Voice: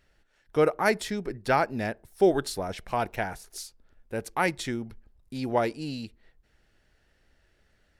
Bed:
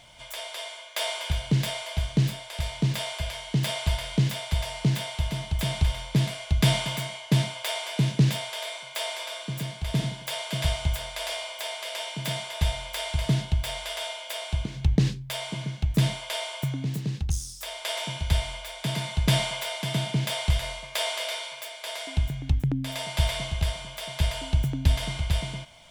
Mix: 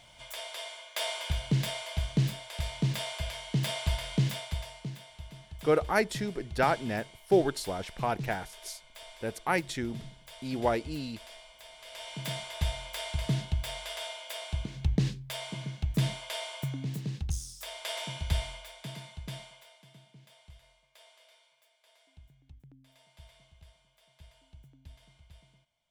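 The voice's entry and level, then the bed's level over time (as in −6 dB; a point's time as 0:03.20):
5.10 s, −2.5 dB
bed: 0:04.35 −4 dB
0:04.98 −17.5 dB
0:11.71 −17.5 dB
0:12.17 −5.5 dB
0:18.42 −5.5 dB
0:20.03 −30 dB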